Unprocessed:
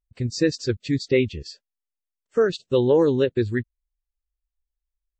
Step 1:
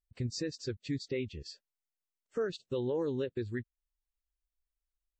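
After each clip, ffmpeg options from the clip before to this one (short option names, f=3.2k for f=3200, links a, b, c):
-af "alimiter=limit=-19.5dB:level=0:latency=1:release=432,volume=-6dB"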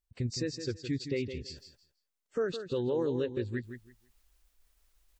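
-af "areverse,acompressor=mode=upward:threshold=-53dB:ratio=2.5,areverse,aecho=1:1:164|328|492:0.335|0.067|0.0134,volume=2dB"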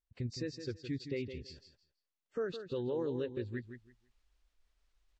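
-af "lowpass=5.1k,volume=-5dB"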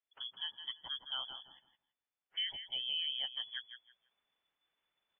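-af "aemphasis=mode=production:type=bsi,lowpass=f=3k:t=q:w=0.5098,lowpass=f=3k:t=q:w=0.6013,lowpass=f=3k:t=q:w=0.9,lowpass=f=3k:t=q:w=2.563,afreqshift=-3500"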